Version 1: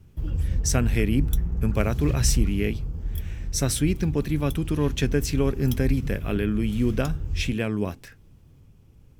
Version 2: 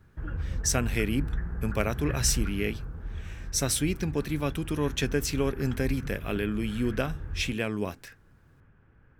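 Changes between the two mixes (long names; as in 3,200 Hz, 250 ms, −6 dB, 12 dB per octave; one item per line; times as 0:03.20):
background: add low-pass with resonance 1,600 Hz, resonance Q 6.6
master: add low-shelf EQ 340 Hz −7.5 dB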